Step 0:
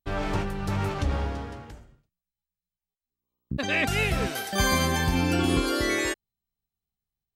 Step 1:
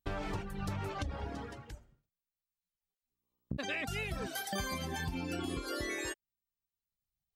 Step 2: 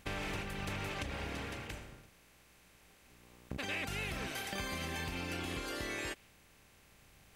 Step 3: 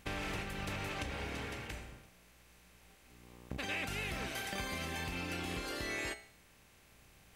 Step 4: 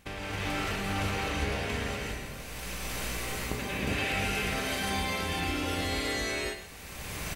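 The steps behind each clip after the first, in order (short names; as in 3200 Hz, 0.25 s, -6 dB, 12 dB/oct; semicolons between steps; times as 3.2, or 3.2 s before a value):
reverb removal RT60 1 s; compressor 10:1, threshold -34 dBFS, peak gain reduction 15 dB
per-bin compression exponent 0.4; dynamic EQ 2800 Hz, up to +4 dB, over -49 dBFS, Q 1.1; gain -8 dB
resonator 60 Hz, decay 0.53 s, harmonics all, mix 60%; gain +5.5 dB
recorder AGC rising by 21 dB/s; echo 0.111 s -10 dB; non-linear reverb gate 0.43 s rising, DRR -7 dB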